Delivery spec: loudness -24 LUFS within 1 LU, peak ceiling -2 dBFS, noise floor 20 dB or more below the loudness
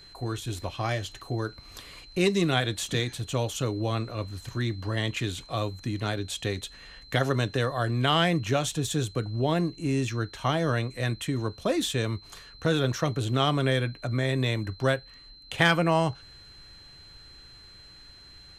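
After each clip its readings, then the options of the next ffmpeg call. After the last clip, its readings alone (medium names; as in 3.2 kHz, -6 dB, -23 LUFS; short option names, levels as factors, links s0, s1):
steady tone 4.1 kHz; tone level -49 dBFS; loudness -28.0 LUFS; peak level -7.0 dBFS; loudness target -24.0 LUFS
-> -af "bandreject=f=4100:w=30"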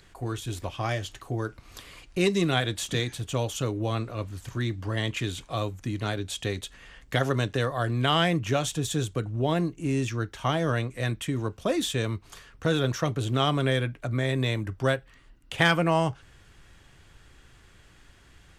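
steady tone not found; loudness -28.0 LUFS; peak level -7.0 dBFS; loudness target -24.0 LUFS
-> -af "volume=1.58"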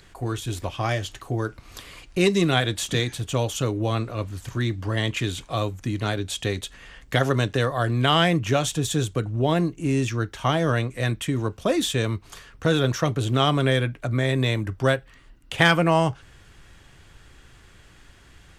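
loudness -24.0 LUFS; peak level -3.0 dBFS; noise floor -52 dBFS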